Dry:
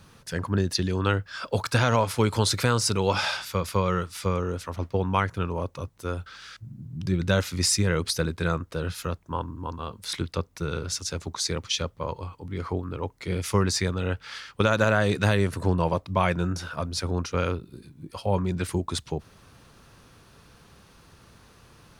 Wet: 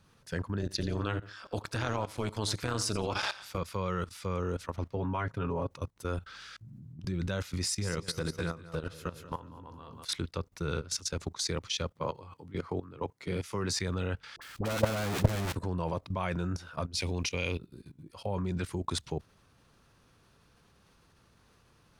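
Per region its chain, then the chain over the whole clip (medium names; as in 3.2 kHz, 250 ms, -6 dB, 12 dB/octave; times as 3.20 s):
0.60–3.58 s: feedback delay 87 ms, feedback 28%, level -17 dB + AM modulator 210 Hz, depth 65%
4.96–5.71 s: treble shelf 2.8 kHz -10 dB + comb 7.3 ms, depth 61%
7.62–10.05 s: feedback delay 188 ms, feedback 41%, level -9.5 dB + compression, threshold -27 dBFS + doubling 18 ms -12 dB
11.92–13.79 s: high-pass 100 Hz 24 dB/octave + doubling 13 ms -13 dB
14.36–15.55 s: square wave that keeps the level + phase dispersion highs, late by 56 ms, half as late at 900 Hz + transformer saturation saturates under 150 Hz
16.95–17.59 s: resonant high shelf 1.9 kHz +6.5 dB, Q 3 + band-stop 1.3 kHz, Q 5.1
whole clip: treble shelf 11 kHz -3.5 dB; level held to a coarse grid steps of 16 dB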